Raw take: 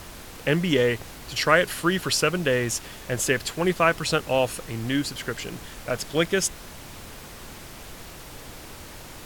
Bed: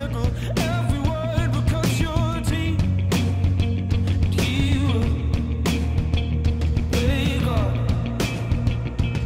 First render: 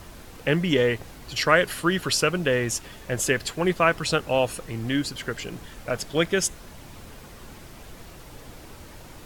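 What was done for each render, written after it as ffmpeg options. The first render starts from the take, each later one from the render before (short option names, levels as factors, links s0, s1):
-af "afftdn=nr=6:nf=-42"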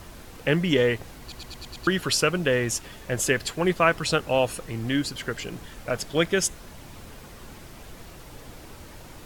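-filter_complex "[0:a]asplit=7[s0][s1][s2][s3][s4][s5][s6];[s0]atrim=end=1.322[s7];[s1]atrim=start=1.208:end=1.322[s8];[s2]atrim=start=1.208:end=1.322[s9];[s3]atrim=start=1.208:end=1.322[s10];[s4]atrim=start=1.208:end=1.322[s11];[s5]atrim=start=1.208:end=1.322[s12];[s6]atrim=start=1.868[s13];[s7][s8]acrossfade=d=0.004:c1=hsin:c2=hsin[s14];[s14][s9]acrossfade=d=0.004:c1=hsin:c2=hsin[s15];[s15][s10]acrossfade=d=0.004:c1=hsin:c2=hsin[s16];[s16][s11]acrossfade=d=0.004:c1=hsin:c2=hsin[s17];[s17][s12]acrossfade=d=0.004:c1=hsin:c2=hsin[s18];[s18][s13]acrossfade=d=0.004:c1=hsin:c2=hsin"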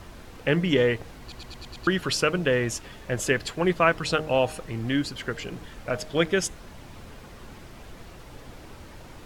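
-af "highshelf=f=6700:g=-9.5,bandreject=f=155.2:t=h:w=4,bandreject=f=310.4:t=h:w=4,bandreject=f=465.6:t=h:w=4,bandreject=f=620.8:t=h:w=4,bandreject=f=776:t=h:w=4,bandreject=f=931.2:t=h:w=4"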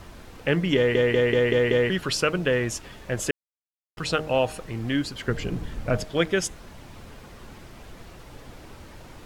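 -filter_complex "[0:a]asettb=1/sr,asplit=3[s0][s1][s2];[s0]atrim=end=5.284[s3];[s1]atrim=start=5.28:end=6.04,asetpts=PTS-STARTPTS,afade=t=in:d=0.004:c=qsin,afade=t=out:st=0.756:d=0.004:c=qsin,lowshelf=f=330:g=11[s4];[s2]atrim=start=6.036[s5];[s3][s4]acrossfade=d=0.004:c1=hsin:c2=qsin[s6];[s6][s5]acrossfade=d=0.004:c1=qsin:c2=hsin,asplit=9[s7][s8][s9][s10][s11][s12][s13][s14][s15];[s7]atrim=end=0.952[s16];[s8]atrim=start=0.758:end=0.952[s17];[s9]atrim=start=0.758:end=0.952[s18];[s10]atrim=start=0.758:end=0.952[s19];[s11]atrim=start=0.758:end=0.952[s20];[s12]atrim=start=0.758:end=0.952[s21];[s13]atrim=start=1.898:end=3.31,asetpts=PTS-STARTPTS,afade=t=out:st=1.408:d=0.004:c=hsin[s22];[s14]atrim=start=3.31:end=3.97,asetpts=PTS-STARTPTS,volume=0[s23];[s15]atrim=start=3.97,asetpts=PTS-STARTPTS,afade=t=in:d=0.004:c=hsin[s24];[s16][s17]acrossfade=d=0.004:c1=hsin:c2=hsin[s25];[s25][s18]acrossfade=d=0.004:c1=hsin:c2=hsin[s26];[s26][s19]acrossfade=d=0.004:c1=hsin:c2=hsin[s27];[s27][s20]acrossfade=d=0.004:c1=hsin:c2=hsin[s28];[s28][s21]acrossfade=d=0.004:c1=hsin:c2=hsin[s29];[s22][s23][s24]concat=n=3:v=0:a=1[s30];[s29][s30]acrossfade=d=0.004:c1=hsin:c2=hsin"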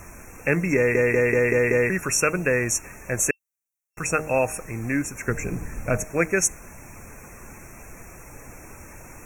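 -af "afftfilt=real='re*(1-between(b*sr/4096,2700,5500))':imag='im*(1-between(b*sr/4096,2700,5500))':win_size=4096:overlap=0.75,highshelf=f=2500:g=11"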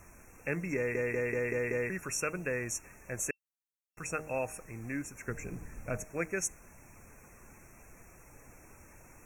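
-af "volume=0.237"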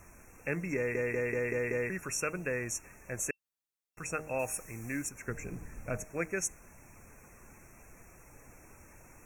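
-filter_complex "[0:a]asettb=1/sr,asplit=3[s0][s1][s2];[s0]atrim=end=4.394[s3];[s1]atrim=start=4.39:end=5.09,asetpts=PTS-STARTPTS,afade=t=in:d=0.004:c=qsin,afade=t=out:st=0.696:d=0.004:c=qsin,highshelf=f=4000:g=10.5[s4];[s2]atrim=start=5.086[s5];[s3][s4]acrossfade=d=0.004:c1=hsin:c2=qsin[s6];[s6][s5]acrossfade=d=0.004:c1=qsin:c2=hsin"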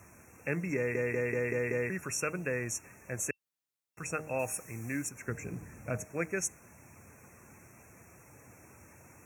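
-af "highpass=f=82:w=0.5412,highpass=f=82:w=1.3066,lowshelf=f=140:g=5"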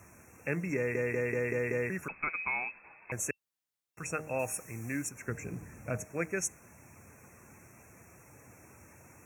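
-filter_complex "[0:a]asettb=1/sr,asplit=3[s0][s1][s2];[s0]atrim=end=2.084[s3];[s1]atrim=start=2.08:end=3.12,asetpts=PTS-STARTPTS,afade=t=in:d=0.004:c=qsin,afade=t=out:st=1.036:d=0.004:c=qsin,lowpass=f=2300:t=q:w=0.5098,lowpass=f=2300:t=q:w=0.6013,lowpass=f=2300:t=q:w=0.9,lowpass=f=2300:t=q:w=2.563,afreqshift=-2700[s4];[s2]atrim=start=3.116[s5];[s3][s4]acrossfade=d=0.004:c1=hsin:c2=qsin[s6];[s6][s5]acrossfade=d=0.004:c1=qsin:c2=hsin"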